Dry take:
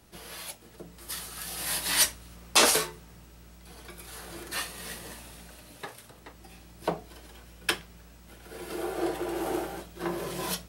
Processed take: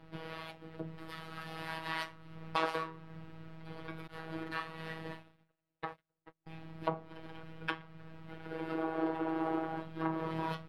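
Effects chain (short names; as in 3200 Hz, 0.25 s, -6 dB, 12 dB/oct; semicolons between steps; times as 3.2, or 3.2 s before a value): 4.07–6.47 gate -43 dBFS, range -40 dB; dynamic EQ 1100 Hz, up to +7 dB, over -49 dBFS, Q 1.9; compressor 2:1, threshold -42 dBFS, peak gain reduction 15 dB; robotiser 161 Hz; air absorption 410 m; gain +7 dB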